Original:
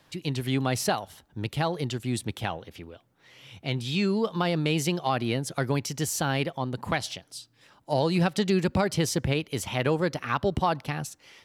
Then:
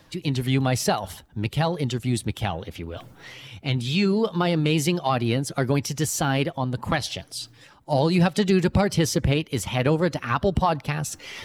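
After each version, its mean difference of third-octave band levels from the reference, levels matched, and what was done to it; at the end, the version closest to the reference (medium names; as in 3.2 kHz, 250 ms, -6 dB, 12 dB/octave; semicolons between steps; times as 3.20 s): 2.0 dB: coarse spectral quantiser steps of 15 dB; bass shelf 82 Hz +9 dB; reverse; upward compressor, threshold -30 dBFS; reverse; trim +3.5 dB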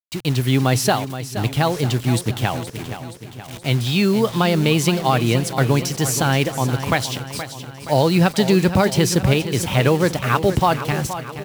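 7.0 dB: bit crusher 7-bit; peaking EQ 120 Hz +5.5 dB 0.29 oct; on a send: feedback delay 473 ms, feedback 56%, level -11.5 dB; on the sum: trim +8 dB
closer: first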